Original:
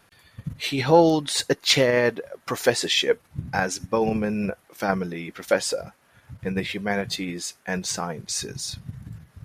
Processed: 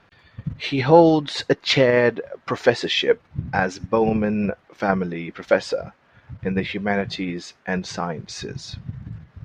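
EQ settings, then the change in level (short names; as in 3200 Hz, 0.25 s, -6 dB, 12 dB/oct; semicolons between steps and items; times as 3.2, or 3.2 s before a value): air absorption 190 m; +4.0 dB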